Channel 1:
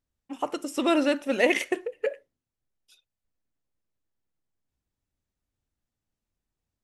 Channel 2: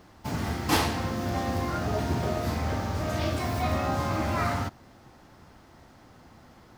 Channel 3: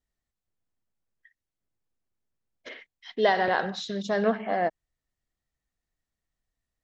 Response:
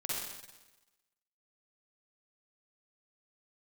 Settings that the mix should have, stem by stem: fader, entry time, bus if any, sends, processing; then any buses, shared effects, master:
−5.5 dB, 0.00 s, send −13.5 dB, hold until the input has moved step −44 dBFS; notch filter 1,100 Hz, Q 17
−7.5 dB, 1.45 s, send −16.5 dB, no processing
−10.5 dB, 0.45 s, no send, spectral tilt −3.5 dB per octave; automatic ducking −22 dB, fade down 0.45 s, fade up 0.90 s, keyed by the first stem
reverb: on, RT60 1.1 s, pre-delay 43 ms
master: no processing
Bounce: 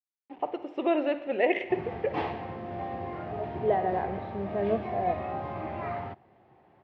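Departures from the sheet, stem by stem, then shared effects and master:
stem 2: send off
master: extra loudspeaker in its box 110–2,700 Hz, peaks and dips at 260 Hz −7 dB, 390 Hz +7 dB, 730 Hz +7 dB, 1,400 Hz −8 dB

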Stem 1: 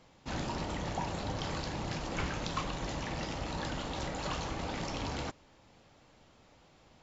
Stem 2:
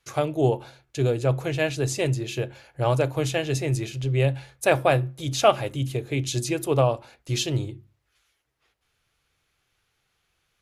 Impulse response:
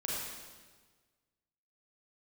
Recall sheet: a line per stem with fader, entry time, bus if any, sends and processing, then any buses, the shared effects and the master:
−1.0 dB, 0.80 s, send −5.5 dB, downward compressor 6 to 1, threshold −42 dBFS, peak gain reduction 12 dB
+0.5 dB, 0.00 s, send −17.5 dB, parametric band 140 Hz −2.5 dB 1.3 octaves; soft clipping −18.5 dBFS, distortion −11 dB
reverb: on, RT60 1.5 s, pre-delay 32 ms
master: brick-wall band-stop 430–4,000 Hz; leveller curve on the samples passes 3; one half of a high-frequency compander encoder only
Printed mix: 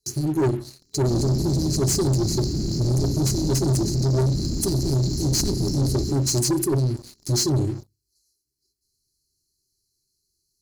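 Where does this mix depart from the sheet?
stem 1: missing downward compressor 6 to 1, threshold −42 dBFS, peak gain reduction 12 dB
stem 2: send off

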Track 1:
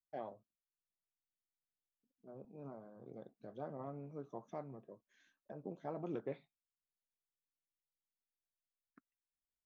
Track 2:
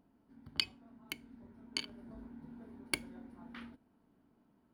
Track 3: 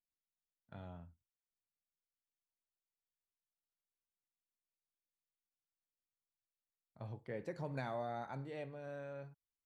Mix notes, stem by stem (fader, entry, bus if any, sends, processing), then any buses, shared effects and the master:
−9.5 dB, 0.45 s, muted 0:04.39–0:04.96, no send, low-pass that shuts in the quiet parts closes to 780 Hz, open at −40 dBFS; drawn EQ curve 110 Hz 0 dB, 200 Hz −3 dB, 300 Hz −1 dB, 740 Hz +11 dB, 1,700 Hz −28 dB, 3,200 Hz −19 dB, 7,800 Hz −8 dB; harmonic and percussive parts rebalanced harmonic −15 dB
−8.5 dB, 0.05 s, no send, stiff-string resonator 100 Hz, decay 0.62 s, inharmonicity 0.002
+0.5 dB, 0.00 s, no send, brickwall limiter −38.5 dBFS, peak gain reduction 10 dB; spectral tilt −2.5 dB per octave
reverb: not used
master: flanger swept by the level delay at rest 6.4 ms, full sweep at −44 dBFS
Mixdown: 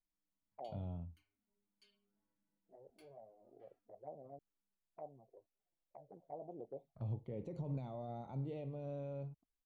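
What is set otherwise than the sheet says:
stem 1: missing harmonic and percussive parts rebalanced harmonic −15 dB
stem 2 −8.5 dB → −16.5 dB

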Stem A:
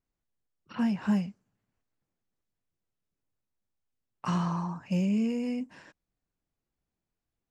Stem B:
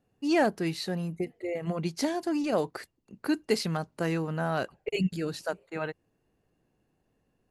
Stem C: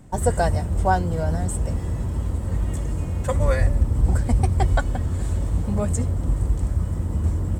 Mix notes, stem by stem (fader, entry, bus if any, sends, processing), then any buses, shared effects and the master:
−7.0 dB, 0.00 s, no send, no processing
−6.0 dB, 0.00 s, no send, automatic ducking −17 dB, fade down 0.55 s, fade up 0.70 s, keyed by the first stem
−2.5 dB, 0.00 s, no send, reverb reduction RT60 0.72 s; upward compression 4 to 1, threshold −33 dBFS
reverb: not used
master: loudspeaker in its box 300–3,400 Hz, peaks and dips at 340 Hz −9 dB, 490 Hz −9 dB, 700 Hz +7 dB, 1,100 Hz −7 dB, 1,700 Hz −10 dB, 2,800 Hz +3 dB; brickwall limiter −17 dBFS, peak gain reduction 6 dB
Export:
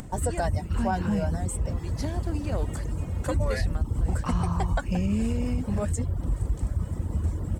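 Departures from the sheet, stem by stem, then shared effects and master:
stem A −7.0 dB → +0.5 dB
master: missing loudspeaker in its box 300–3,400 Hz, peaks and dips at 340 Hz −9 dB, 490 Hz −9 dB, 700 Hz +7 dB, 1,100 Hz −7 dB, 1,700 Hz −10 dB, 2,800 Hz +3 dB

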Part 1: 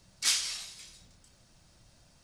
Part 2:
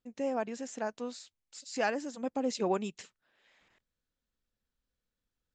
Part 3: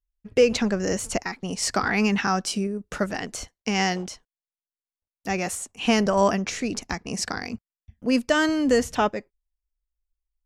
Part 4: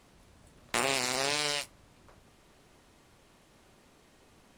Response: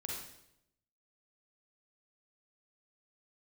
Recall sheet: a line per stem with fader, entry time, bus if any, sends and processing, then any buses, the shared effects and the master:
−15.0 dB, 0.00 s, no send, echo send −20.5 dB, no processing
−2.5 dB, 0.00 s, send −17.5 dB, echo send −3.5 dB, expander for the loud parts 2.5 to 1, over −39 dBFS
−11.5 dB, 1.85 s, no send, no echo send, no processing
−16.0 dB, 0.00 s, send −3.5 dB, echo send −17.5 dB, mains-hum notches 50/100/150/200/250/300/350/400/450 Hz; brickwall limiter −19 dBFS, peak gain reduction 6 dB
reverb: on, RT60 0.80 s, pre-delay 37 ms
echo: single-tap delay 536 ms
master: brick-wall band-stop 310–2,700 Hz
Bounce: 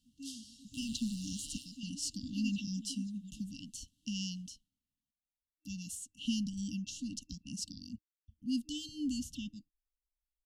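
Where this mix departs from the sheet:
stem 1 −15.0 dB → −21.0 dB
stem 3: entry 1.85 s → 0.40 s

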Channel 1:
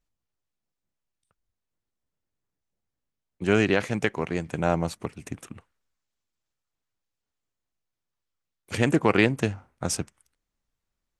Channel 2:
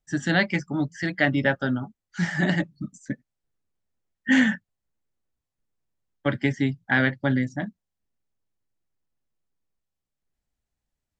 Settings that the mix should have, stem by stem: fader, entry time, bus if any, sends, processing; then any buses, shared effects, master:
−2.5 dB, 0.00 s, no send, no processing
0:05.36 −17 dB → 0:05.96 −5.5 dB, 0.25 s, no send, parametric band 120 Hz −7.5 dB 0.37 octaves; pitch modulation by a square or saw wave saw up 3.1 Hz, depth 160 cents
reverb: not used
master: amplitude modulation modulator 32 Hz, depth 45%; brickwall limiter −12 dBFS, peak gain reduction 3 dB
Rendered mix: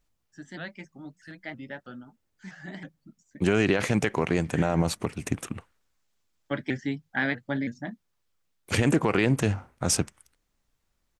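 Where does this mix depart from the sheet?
stem 1 −2.5 dB → +7.0 dB
master: missing amplitude modulation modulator 32 Hz, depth 45%

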